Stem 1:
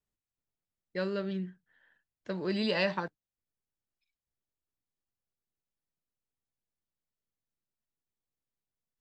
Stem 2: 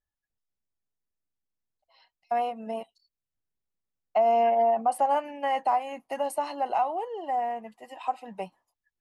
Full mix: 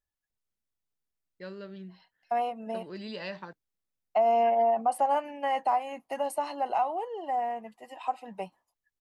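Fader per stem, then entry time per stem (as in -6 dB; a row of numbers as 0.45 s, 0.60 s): -9.0 dB, -1.5 dB; 0.45 s, 0.00 s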